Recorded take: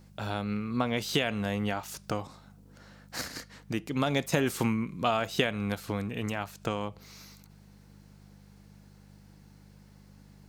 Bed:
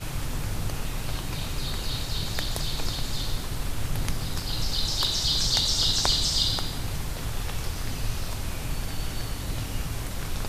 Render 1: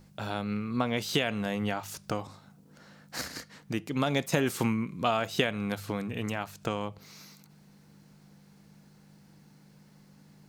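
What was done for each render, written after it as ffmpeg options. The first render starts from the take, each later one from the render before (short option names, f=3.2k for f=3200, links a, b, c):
-af "bandreject=f=50:t=h:w=4,bandreject=f=100:t=h:w=4"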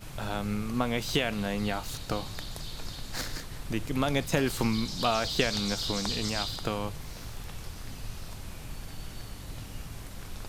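-filter_complex "[1:a]volume=-10dB[a];[0:a][a]amix=inputs=2:normalize=0"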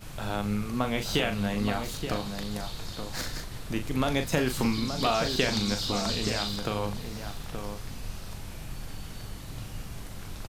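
-filter_complex "[0:a]asplit=2[a][b];[b]adelay=39,volume=-8dB[c];[a][c]amix=inputs=2:normalize=0,asplit=2[d][e];[e]adelay=874.6,volume=-7dB,highshelf=f=4k:g=-19.7[f];[d][f]amix=inputs=2:normalize=0"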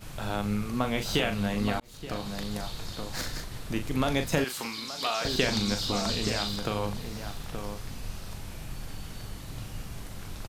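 -filter_complex "[0:a]asettb=1/sr,asplit=3[a][b][c];[a]atrim=end=4.444[d];[b]atrim=start=4.44:end=5.25,asetpts=PTS-STARTPTS,afade=t=in:d=0.004:c=qsin,afade=t=out:st=0.806:d=0.004:c=qsin,highpass=f=1.1k:p=1[e];[c]atrim=start=5.246[f];[d][e]acrossfade=d=0.004:c1=hsin:c2=qsin[g];[g][f]acrossfade=d=0.004:c1=qsin:c2=hsin,asplit=2[h][i];[h]atrim=end=1.8,asetpts=PTS-STARTPTS,afade=t=out:st=1.796:d=0.004:c=hsin[j];[i]atrim=start=1.8,asetpts=PTS-STARTPTS,afade=t=in:d=0.53[k];[j][k]concat=n=2:v=0:a=1"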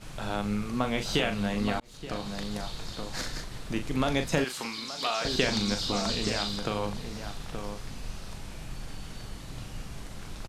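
-af "lowpass=9.7k,equalizer=f=89:t=o:w=0.43:g=-7.5"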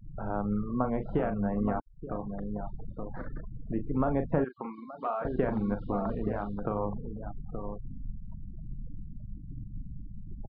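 -af "afftfilt=real='re*gte(hypot(re,im),0.0224)':imag='im*gte(hypot(re,im),0.0224)':win_size=1024:overlap=0.75,lowpass=f=1.3k:w=0.5412,lowpass=f=1.3k:w=1.3066"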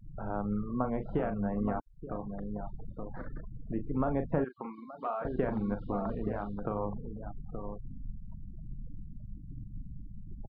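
-af "volume=-2.5dB"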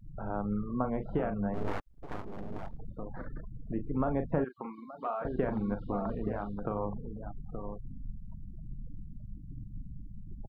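-filter_complex "[0:a]asettb=1/sr,asplit=3[a][b][c];[a]atrim=end=1.544[d];[b]atrim=start=1.54:end=2.78,asetpts=PTS-STARTPTS,afade=t=in:d=0.004:c=qsin,afade=t=out:st=1.236:d=0.004:c=qsin,aeval=exprs='abs(val(0))':c=same[e];[c]atrim=start=2.776[f];[d][e]acrossfade=d=0.004:c1=hsin:c2=qsin[g];[g][f]acrossfade=d=0.004:c1=qsin:c2=hsin"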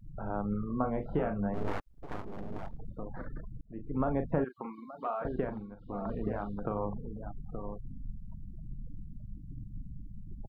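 -filter_complex "[0:a]asettb=1/sr,asplit=3[a][b][c];[a]atrim=end=0.514[d];[b]atrim=start=0.51:end=1.4,asetpts=PTS-STARTPTS,afade=t=in:d=0.004:c=qsin,afade=t=out:st=0.886:d=0.004:c=qsin,asplit=2[e][f];[f]adelay=27,volume=-9dB[g];[e][g]amix=inputs=2:normalize=0,atrim=end_sample=39249[h];[c]atrim=start=1.396[i];[d][h]acrossfade=d=0.004:c1=hsin:c2=qsin[j];[j][i]acrossfade=d=0.004:c1=qsin:c2=hsin,asplit=4[k][l][m][n];[k]atrim=end=3.61,asetpts=PTS-STARTPTS,afade=t=out:st=3.606:d=0.004:c=hsin[o];[l]atrim=start=3.61:end=5.69,asetpts=PTS-STARTPTS,afade=t=in:d=0.41,afade=t=out:st=1.69:d=0.39:silence=0.177828[p];[m]atrim=start=5.69:end=5.77,asetpts=PTS-STARTPTS,volume=-15dB[q];[n]atrim=start=5.77,asetpts=PTS-STARTPTS,afade=t=in:d=0.39:silence=0.177828[r];[o][p][q][r]concat=n=4:v=0:a=1"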